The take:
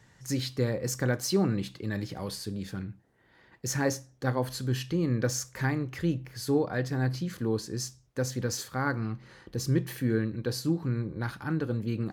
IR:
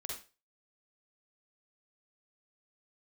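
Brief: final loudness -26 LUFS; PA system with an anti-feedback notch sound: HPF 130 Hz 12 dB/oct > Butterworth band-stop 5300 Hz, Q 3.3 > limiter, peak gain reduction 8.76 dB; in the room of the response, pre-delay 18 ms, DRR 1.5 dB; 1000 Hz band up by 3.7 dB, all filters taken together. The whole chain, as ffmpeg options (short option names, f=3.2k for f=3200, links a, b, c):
-filter_complex "[0:a]equalizer=f=1k:t=o:g=5,asplit=2[a][b];[1:a]atrim=start_sample=2205,adelay=18[c];[b][c]afir=irnorm=-1:irlink=0,volume=-0.5dB[d];[a][d]amix=inputs=2:normalize=0,highpass=130,asuperstop=centerf=5300:order=8:qfactor=3.3,volume=5dB,alimiter=limit=-14.5dB:level=0:latency=1"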